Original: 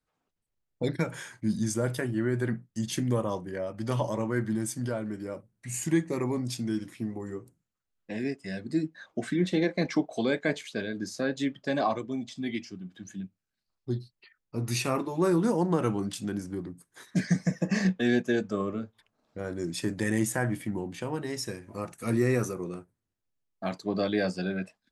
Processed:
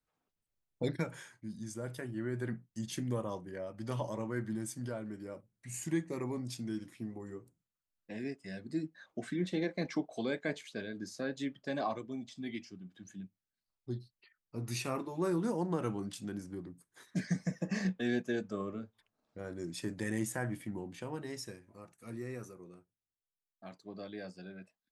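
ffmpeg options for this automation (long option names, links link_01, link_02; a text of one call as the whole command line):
ffmpeg -i in.wav -af "volume=3.5dB,afade=type=out:start_time=0.83:duration=0.67:silence=0.266073,afade=type=in:start_time=1.5:duration=0.98:silence=0.398107,afade=type=out:start_time=21.33:duration=0.45:silence=0.354813" out.wav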